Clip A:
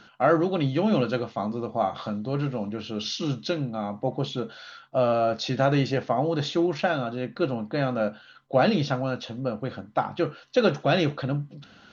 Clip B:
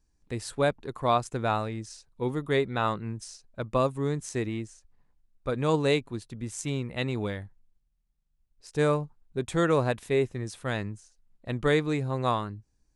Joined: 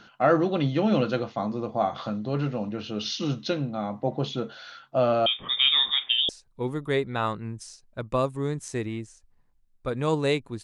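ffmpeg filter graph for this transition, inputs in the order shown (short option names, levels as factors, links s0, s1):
-filter_complex "[0:a]asettb=1/sr,asplit=3[s0][s1][s2];[s0]atrim=end=5.264[s3];[s1]atrim=start=5.26:end=6.29,asetpts=PTS-STARTPTS,afade=t=in:d=0.004:c=qsin,afade=t=out:st=1.026:d=0.004:c=qsin,lowpass=f=3200:t=q:w=0.5098,lowpass=f=3200:t=q:w=0.6013,lowpass=f=3200:t=q:w=0.9,lowpass=f=3200:t=q:w=2.563,afreqshift=-3800[s4];[s2]atrim=start=6.286[s5];[s3][s4]acrossfade=d=0.004:c1=hsin:c2=qsin[s6];[s6][s5]acrossfade=d=0.004:c1=qsin:c2=hsin,apad=whole_dur=10.63,atrim=end=10.63,atrim=end=6.292[s7];[1:a]atrim=start=1.898:end=6.24[s8];[s7][s8]acrossfade=d=0.004:c1=hsin:c2=hsin"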